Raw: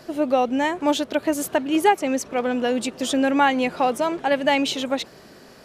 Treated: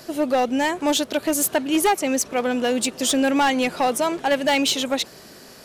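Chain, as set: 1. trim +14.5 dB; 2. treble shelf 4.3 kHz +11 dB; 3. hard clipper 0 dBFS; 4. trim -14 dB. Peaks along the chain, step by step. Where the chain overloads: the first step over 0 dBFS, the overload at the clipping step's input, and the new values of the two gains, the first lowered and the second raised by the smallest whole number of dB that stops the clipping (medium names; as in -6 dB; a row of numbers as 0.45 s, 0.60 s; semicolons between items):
+8.0 dBFS, +9.0 dBFS, 0.0 dBFS, -14.0 dBFS; step 1, 9.0 dB; step 1 +5.5 dB, step 4 -5 dB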